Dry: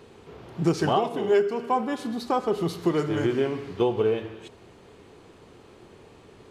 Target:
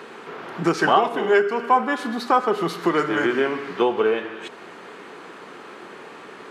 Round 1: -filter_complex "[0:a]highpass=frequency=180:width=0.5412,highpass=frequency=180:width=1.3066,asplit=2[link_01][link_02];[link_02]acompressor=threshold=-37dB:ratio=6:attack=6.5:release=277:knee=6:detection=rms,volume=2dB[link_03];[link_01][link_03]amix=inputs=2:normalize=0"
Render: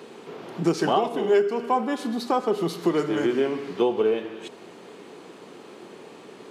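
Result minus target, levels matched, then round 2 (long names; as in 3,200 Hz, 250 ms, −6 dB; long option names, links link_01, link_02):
2,000 Hz band −8.0 dB
-filter_complex "[0:a]highpass=frequency=180:width=0.5412,highpass=frequency=180:width=1.3066,equalizer=frequency=1500:width_type=o:width=1.6:gain=12.5,asplit=2[link_01][link_02];[link_02]acompressor=threshold=-37dB:ratio=6:attack=6.5:release=277:knee=6:detection=rms,volume=2dB[link_03];[link_01][link_03]amix=inputs=2:normalize=0"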